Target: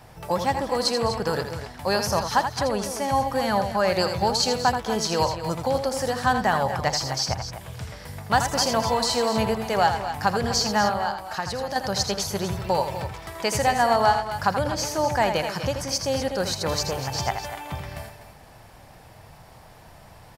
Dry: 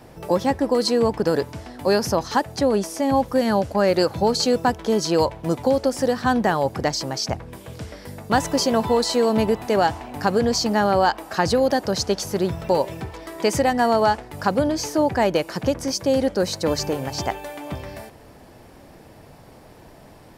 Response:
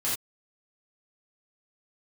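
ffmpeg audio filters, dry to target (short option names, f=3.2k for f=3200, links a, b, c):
-filter_complex "[0:a]firequalizer=gain_entry='entry(120,0);entry(280,-12);entry(760,0)':delay=0.05:min_phase=1,asettb=1/sr,asplit=3[a][b][c];[a]atrim=end=10.894[d];[b]atrim=start=10.89:end=11.76,asetpts=PTS-STARTPTS,afade=t=in:d=0.004:c=qsin,afade=t=out:st=0.866:d=0.004:c=qsin,acompressor=threshold=-32dB:ratio=2[e];[c]atrim=start=11.756[f];[d][e]acrossfade=d=0.004:c1=hsin:c2=qsin[g];[g][f]acrossfade=d=0.004:c1=qsin:c2=hsin,aecho=1:1:82|211|247:0.398|0.119|0.282"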